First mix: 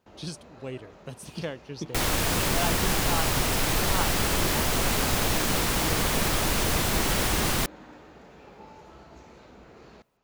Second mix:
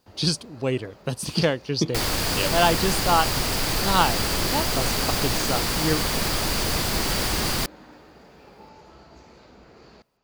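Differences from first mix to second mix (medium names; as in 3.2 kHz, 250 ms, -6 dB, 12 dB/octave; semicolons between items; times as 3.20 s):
speech +12.0 dB; master: add peaking EQ 4.7 kHz +9.5 dB 0.23 oct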